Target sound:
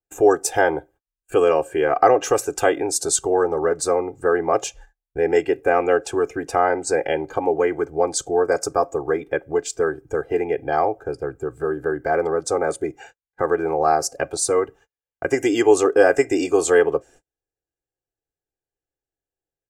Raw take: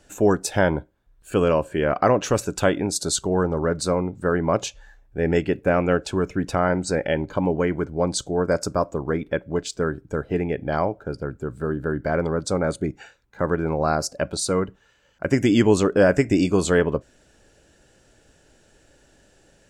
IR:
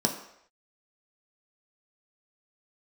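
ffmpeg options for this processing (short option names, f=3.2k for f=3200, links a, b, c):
-filter_complex "[0:a]equalizer=f=160:t=o:w=0.67:g=8,equalizer=f=630:t=o:w=0.67:g=7,equalizer=f=4k:t=o:w=0.67:g=-9,agate=range=-40dB:threshold=-43dB:ratio=16:detection=peak,acrossover=split=310[a][b];[a]acompressor=threshold=-35dB:ratio=12[c];[c][b]amix=inputs=2:normalize=0,aecho=1:1:2.5:0.96,adynamicequalizer=threshold=0.0158:dfrequency=3800:dqfactor=0.7:tfrequency=3800:tqfactor=0.7:attack=5:release=100:ratio=0.375:range=2:mode=boostabove:tftype=highshelf,volume=-1dB"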